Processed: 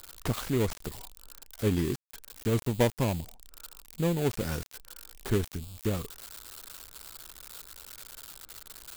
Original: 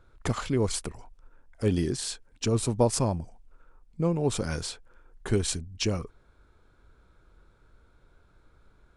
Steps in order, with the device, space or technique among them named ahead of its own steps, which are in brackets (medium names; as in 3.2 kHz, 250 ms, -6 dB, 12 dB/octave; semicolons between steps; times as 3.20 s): budget class-D amplifier (dead-time distortion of 0.24 ms; zero-crossing glitches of -23.5 dBFS); trim -1.5 dB